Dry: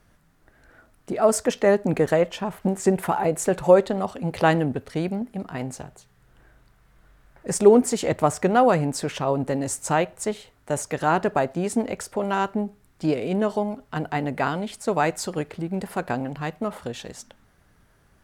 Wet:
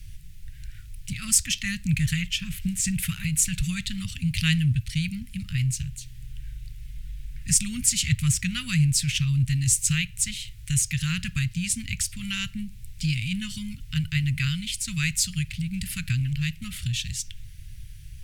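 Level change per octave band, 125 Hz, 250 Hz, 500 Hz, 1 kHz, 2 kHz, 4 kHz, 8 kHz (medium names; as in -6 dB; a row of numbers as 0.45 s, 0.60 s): +6.0 dB, -4.5 dB, under -40 dB, -27.0 dB, 0.0 dB, +9.0 dB, +8.5 dB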